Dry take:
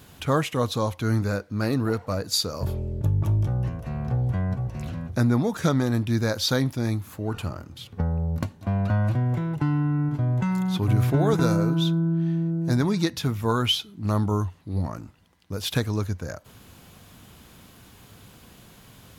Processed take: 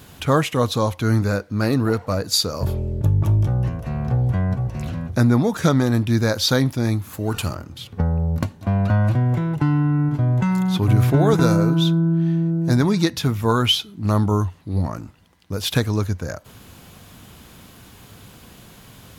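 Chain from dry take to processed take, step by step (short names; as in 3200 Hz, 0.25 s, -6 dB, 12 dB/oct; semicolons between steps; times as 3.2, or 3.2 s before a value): 7.13–7.54 high shelf 5400 Hz -> 2600 Hz +11.5 dB; gain +5 dB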